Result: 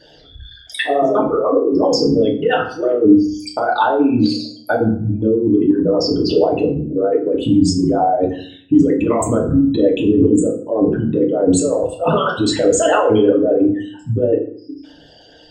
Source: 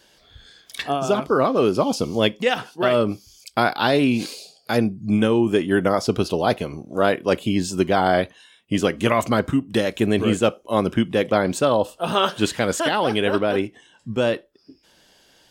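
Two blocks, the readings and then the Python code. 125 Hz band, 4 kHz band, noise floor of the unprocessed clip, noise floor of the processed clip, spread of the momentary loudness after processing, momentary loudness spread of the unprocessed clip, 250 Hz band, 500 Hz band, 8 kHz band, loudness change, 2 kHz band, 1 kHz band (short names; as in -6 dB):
+4.5 dB, +0.5 dB, -57 dBFS, -45 dBFS, 6 LU, 8 LU, +7.5 dB, +5.5 dB, +7.0 dB, +5.5 dB, -1.0 dB, +3.0 dB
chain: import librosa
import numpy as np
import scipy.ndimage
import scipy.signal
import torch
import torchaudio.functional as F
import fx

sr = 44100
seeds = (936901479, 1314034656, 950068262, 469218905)

y = fx.envelope_sharpen(x, sr, power=3.0)
y = fx.over_compress(y, sr, threshold_db=-22.0, ratio=-1.0)
y = fx.rev_fdn(y, sr, rt60_s=0.52, lf_ratio=1.45, hf_ratio=0.75, size_ms=20.0, drr_db=-2.0)
y = F.gain(torch.from_numpy(y), 3.0).numpy()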